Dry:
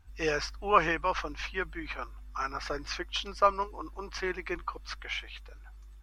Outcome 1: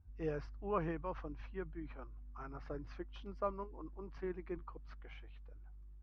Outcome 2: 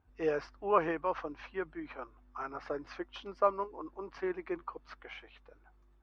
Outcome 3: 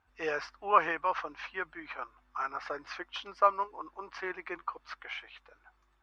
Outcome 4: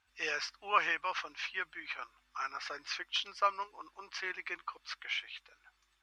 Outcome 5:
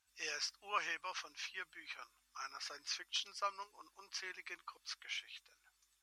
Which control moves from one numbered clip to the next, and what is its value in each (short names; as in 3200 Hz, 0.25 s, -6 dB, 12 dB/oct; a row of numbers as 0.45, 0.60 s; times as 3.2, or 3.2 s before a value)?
band-pass, frequency: 120, 410, 1000, 2900, 7800 Hz